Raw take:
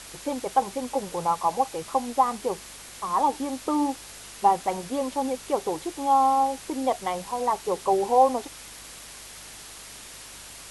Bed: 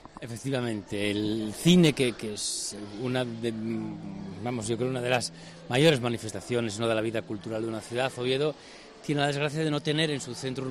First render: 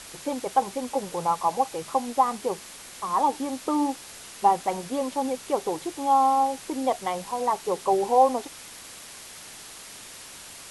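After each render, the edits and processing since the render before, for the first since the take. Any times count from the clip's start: de-hum 50 Hz, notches 3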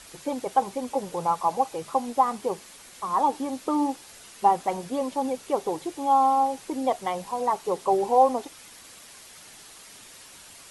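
denoiser 6 dB, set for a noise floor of -44 dBFS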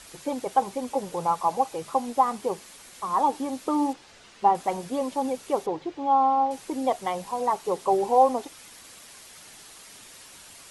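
3.93–4.55 air absorption 97 m; 5.66–6.51 air absorption 180 m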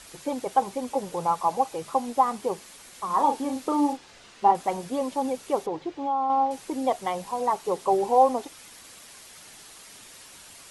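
3.06–4.52 doubler 38 ms -6.5 dB; 5.57–6.3 compressor 3:1, threshold -24 dBFS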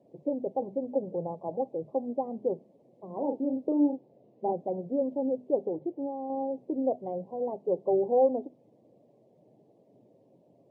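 elliptic band-pass 120–610 Hz, stop band 40 dB; notches 50/100/150/200/250 Hz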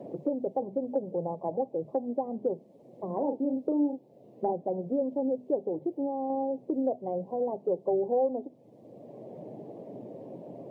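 three-band squash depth 70%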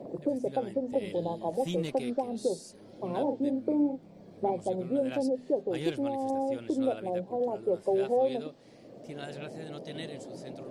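add bed -15.5 dB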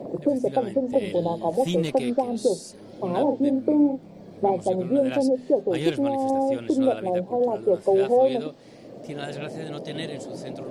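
gain +7.5 dB

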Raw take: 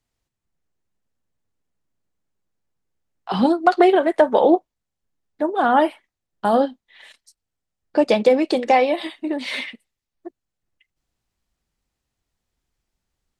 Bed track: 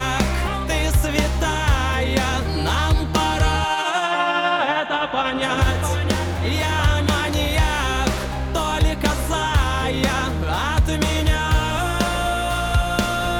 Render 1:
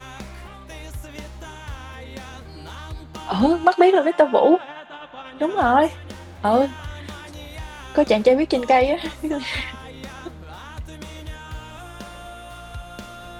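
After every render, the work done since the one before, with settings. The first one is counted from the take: add bed track -16.5 dB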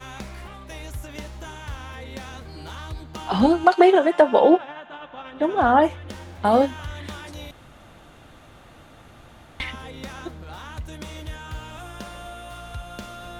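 4.57–6.09 high shelf 4700 Hz -10 dB; 7.51–9.6 room tone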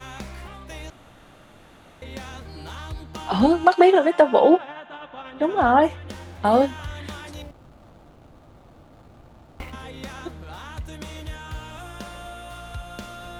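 0.9–2.02 room tone; 7.42–9.73 median filter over 25 samples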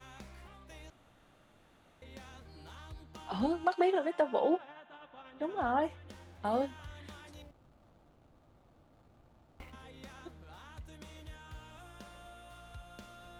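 gain -14.5 dB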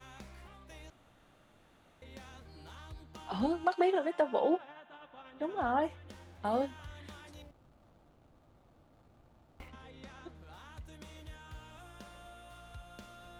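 9.68–10.35 air absorption 53 m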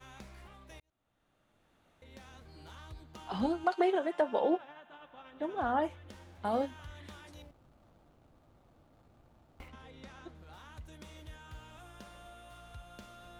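0.8–2.62 fade in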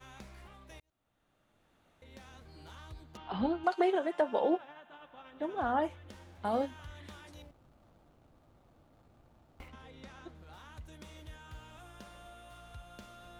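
3.17–3.64 LPF 3900 Hz 24 dB/oct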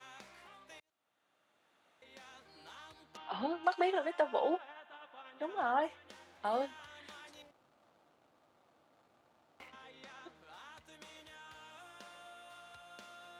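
weighting filter A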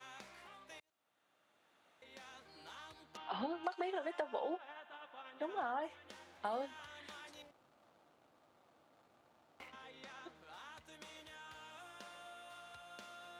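compressor 12:1, threshold -35 dBFS, peak gain reduction 11.5 dB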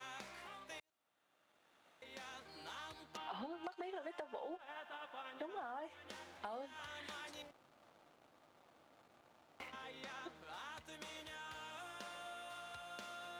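compressor 6:1, threshold -47 dBFS, peak gain reduction 13.5 dB; sample leveller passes 1

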